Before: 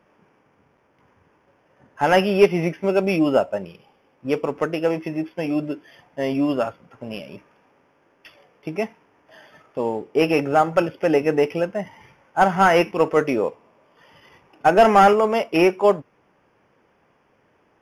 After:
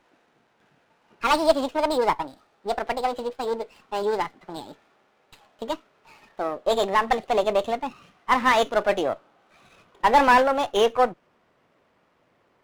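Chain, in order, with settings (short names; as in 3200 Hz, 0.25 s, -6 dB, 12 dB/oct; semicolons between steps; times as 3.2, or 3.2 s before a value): speed glide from 165% -> 117%; running maximum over 5 samples; gain -3 dB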